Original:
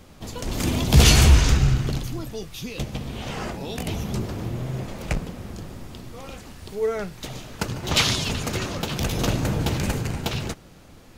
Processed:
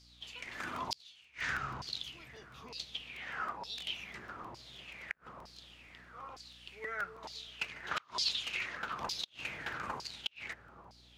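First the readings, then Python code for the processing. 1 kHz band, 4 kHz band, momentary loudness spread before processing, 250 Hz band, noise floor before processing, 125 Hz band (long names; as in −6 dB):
−9.0 dB, −12.0 dB, 21 LU, −27.0 dB, −47 dBFS, −33.0 dB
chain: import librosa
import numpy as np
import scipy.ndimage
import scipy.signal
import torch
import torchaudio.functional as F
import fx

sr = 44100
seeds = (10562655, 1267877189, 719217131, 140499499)

p1 = fx.high_shelf(x, sr, hz=7600.0, db=4.5)
p2 = p1 + fx.echo_wet_lowpass(p1, sr, ms=264, feedback_pct=74, hz=750.0, wet_db=-13.0, dry=0)
p3 = fx.filter_lfo_bandpass(p2, sr, shape='saw_down', hz=1.1, low_hz=930.0, high_hz=5000.0, q=7.2)
p4 = fx.low_shelf(p3, sr, hz=380.0, db=4.5)
p5 = fx.add_hum(p4, sr, base_hz=60, snr_db=27)
p6 = fx.gate_flip(p5, sr, shuts_db=-25.0, range_db=-34)
p7 = fx.buffer_crackle(p6, sr, first_s=0.44, period_s=0.16, block=128, kind='repeat')
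y = F.gain(torch.from_numpy(p7), 4.5).numpy()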